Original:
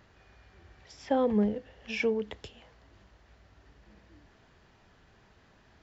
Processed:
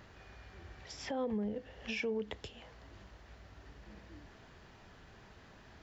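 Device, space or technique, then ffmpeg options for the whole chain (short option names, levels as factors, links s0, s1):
stacked limiters: -af "alimiter=limit=0.0794:level=0:latency=1:release=404,alimiter=level_in=1.58:limit=0.0631:level=0:latency=1:release=155,volume=0.631,alimiter=level_in=2.66:limit=0.0631:level=0:latency=1:release=380,volume=0.376,volume=1.58"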